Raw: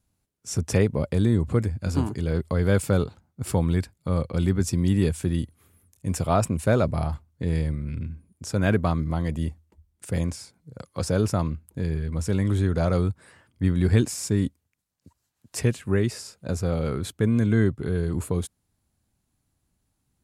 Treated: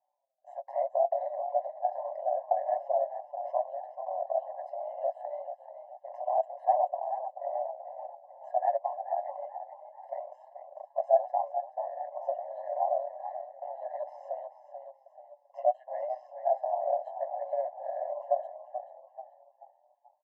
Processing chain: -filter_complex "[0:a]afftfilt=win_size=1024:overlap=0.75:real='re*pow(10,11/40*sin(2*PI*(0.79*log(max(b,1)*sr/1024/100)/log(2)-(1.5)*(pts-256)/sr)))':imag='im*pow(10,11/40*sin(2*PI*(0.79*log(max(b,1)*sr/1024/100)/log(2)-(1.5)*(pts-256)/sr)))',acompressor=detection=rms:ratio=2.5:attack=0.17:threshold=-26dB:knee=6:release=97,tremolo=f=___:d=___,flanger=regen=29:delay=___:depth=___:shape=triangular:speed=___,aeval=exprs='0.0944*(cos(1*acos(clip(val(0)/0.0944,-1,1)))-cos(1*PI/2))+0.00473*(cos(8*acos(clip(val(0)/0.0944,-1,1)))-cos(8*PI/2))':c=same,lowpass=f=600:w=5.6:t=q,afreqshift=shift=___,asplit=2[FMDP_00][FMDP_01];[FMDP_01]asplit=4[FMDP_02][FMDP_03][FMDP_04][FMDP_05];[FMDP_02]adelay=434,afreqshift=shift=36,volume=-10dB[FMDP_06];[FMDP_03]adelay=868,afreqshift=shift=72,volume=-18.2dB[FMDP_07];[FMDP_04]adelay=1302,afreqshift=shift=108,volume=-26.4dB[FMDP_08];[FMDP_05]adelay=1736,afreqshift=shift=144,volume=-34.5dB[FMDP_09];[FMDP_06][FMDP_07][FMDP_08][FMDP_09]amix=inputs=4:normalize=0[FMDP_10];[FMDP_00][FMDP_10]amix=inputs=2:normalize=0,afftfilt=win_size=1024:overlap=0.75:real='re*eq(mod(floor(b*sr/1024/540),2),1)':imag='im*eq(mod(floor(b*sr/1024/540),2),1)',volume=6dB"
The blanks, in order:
130, 0.857, 6.1, 2.8, 0.74, 120